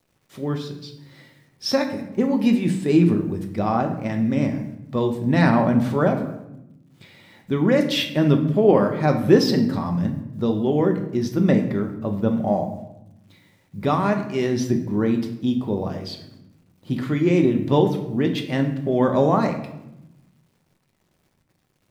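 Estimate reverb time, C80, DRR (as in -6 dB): 0.90 s, 11.5 dB, 3.5 dB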